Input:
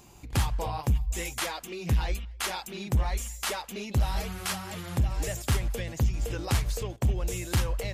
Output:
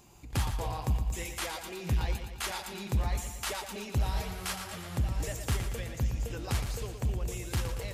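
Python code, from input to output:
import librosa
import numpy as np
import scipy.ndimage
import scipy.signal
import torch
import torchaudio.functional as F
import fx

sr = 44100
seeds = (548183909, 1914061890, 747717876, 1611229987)

p1 = fx.rider(x, sr, range_db=10, speed_s=2.0)
p2 = p1 + fx.echo_feedback(p1, sr, ms=116, feedback_pct=58, wet_db=-8, dry=0)
y = F.gain(torch.from_numpy(p2), -5.0).numpy()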